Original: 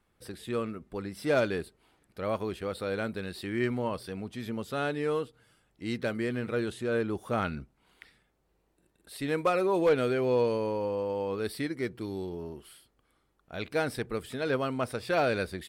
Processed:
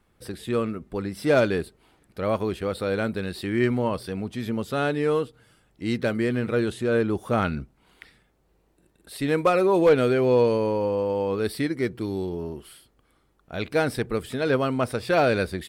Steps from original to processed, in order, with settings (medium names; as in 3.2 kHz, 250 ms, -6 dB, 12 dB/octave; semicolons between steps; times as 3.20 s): bass shelf 490 Hz +3 dB; trim +5 dB